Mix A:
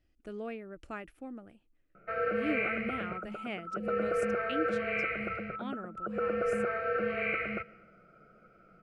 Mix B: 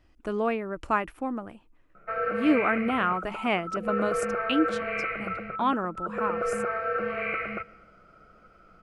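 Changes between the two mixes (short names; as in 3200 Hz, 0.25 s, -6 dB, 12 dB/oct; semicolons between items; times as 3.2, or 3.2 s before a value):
speech +11.0 dB; master: add bell 1000 Hz +13.5 dB 0.61 oct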